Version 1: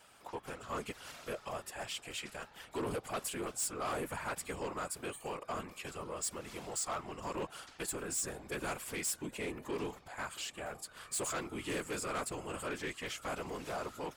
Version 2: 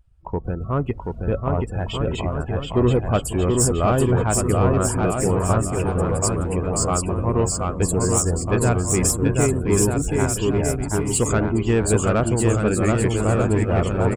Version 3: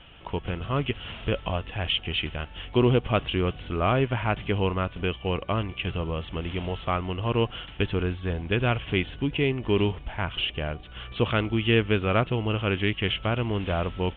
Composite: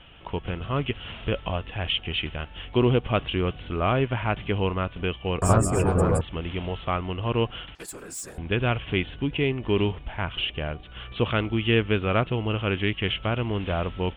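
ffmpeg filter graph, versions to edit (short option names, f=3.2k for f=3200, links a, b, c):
-filter_complex "[2:a]asplit=3[a][b][c];[a]atrim=end=5.422[d];[1:a]atrim=start=5.418:end=6.212[e];[b]atrim=start=6.208:end=7.752[f];[0:a]atrim=start=7.748:end=8.382[g];[c]atrim=start=8.378[h];[d][e]acrossfade=d=0.004:c1=hsin:c2=hsin[i];[i][f]acrossfade=d=0.004:c1=hsin:c2=hsin[j];[j][g]acrossfade=d=0.004:c1=hsin:c2=hsin[k];[k][h]acrossfade=d=0.004:c1=hsin:c2=hsin"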